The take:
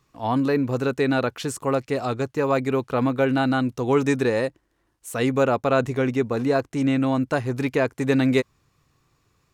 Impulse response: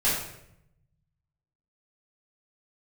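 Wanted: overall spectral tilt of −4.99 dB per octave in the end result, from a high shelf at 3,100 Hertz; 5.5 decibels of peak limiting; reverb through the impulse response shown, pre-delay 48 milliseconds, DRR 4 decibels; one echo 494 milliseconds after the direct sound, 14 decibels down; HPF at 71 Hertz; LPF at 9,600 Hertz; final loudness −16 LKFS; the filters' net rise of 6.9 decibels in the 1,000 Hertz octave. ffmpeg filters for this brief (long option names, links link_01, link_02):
-filter_complex "[0:a]highpass=71,lowpass=9600,equalizer=frequency=1000:width_type=o:gain=8.5,highshelf=frequency=3100:gain=6,alimiter=limit=-8.5dB:level=0:latency=1,aecho=1:1:494:0.2,asplit=2[link_01][link_02];[1:a]atrim=start_sample=2205,adelay=48[link_03];[link_02][link_03]afir=irnorm=-1:irlink=0,volume=-16.5dB[link_04];[link_01][link_04]amix=inputs=2:normalize=0,volume=4.5dB"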